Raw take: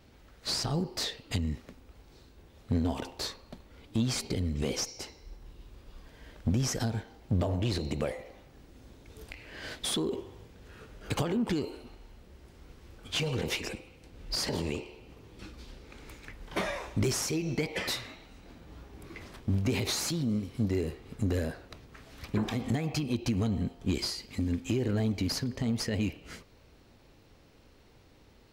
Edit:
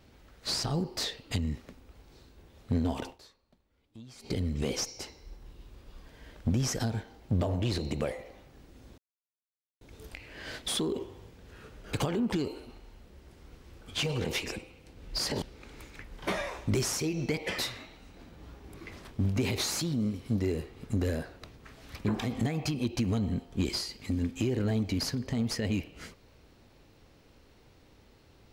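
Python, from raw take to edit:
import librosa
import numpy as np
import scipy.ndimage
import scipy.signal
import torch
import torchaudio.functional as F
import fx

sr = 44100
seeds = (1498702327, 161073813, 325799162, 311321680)

y = fx.edit(x, sr, fx.fade_down_up(start_s=3.1, length_s=1.19, db=-20.0, fade_s=0.12, curve='qua'),
    fx.insert_silence(at_s=8.98, length_s=0.83),
    fx.cut(start_s=14.59, length_s=1.12), tone=tone)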